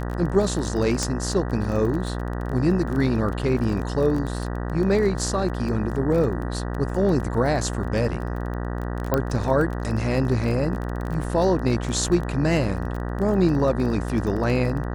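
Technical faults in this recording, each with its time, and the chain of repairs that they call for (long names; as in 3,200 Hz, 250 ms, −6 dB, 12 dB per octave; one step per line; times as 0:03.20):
mains buzz 60 Hz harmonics 32 −28 dBFS
surface crackle 21 per second −28 dBFS
0:01.03: click −11 dBFS
0:09.14: click −8 dBFS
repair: click removal
hum removal 60 Hz, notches 32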